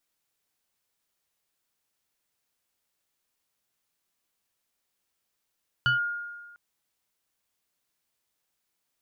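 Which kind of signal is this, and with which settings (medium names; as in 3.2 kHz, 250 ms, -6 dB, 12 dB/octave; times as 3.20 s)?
FM tone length 0.70 s, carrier 1.42 kHz, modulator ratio 1.09, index 0.83, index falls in 0.13 s linear, decay 1.40 s, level -18.5 dB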